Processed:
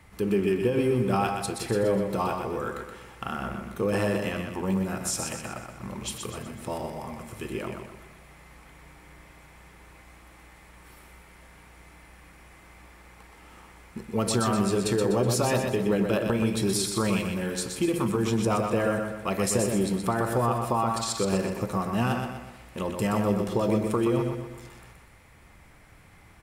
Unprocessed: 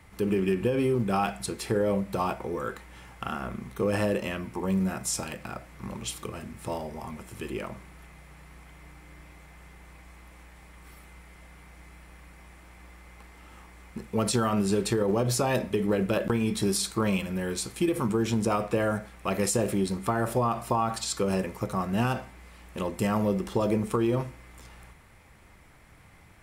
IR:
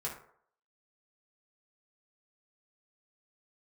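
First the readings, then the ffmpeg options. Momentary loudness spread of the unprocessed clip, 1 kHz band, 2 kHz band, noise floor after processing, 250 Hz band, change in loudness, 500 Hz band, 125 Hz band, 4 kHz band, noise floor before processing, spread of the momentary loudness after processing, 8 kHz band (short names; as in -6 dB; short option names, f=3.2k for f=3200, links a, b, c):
12 LU, +1.5 dB, +1.5 dB, -53 dBFS, +1.0 dB, +1.0 dB, +1.5 dB, +1.5 dB, +1.5 dB, -54 dBFS, 12 LU, +1.5 dB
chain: -af "aecho=1:1:124|248|372|496|620|744:0.531|0.244|0.112|0.0517|0.0238|0.0109"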